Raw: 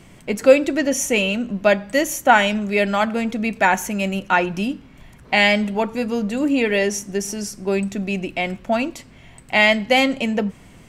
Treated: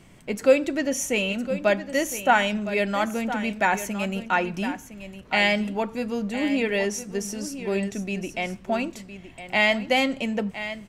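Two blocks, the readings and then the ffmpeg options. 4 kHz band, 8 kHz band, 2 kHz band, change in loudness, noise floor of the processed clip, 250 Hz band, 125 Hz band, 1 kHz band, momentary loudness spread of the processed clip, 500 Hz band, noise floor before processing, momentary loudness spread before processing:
-5.5 dB, -5.0 dB, -5.0 dB, -5.5 dB, -47 dBFS, -5.5 dB, -5.0 dB, -5.5 dB, 10 LU, -5.5 dB, -46 dBFS, 10 LU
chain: -af "aecho=1:1:1011:0.251,volume=0.531"

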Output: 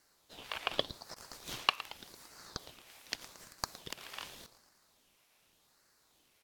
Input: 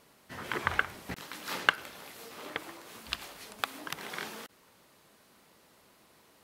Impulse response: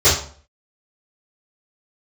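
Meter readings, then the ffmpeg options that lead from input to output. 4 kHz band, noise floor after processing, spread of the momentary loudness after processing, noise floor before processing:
0.0 dB, -71 dBFS, 20 LU, -63 dBFS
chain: -filter_complex "[0:a]highpass=880,asplit=2[s0][s1];[s1]aeval=exprs='sgn(val(0))*max(abs(val(0))-0.00891,0)':c=same,volume=0.316[s2];[s0][s2]amix=inputs=2:normalize=0,afreqshift=410,aecho=1:1:113|226|339|452|565|678:0.168|0.0957|0.0545|0.0311|0.0177|0.0101,aeval=exprs='val(0)*sin(2*PI*1900*n/s+1900*0.6/0.85*sin(2*PI*0.85*n/s))':c=same,volume=0.668"

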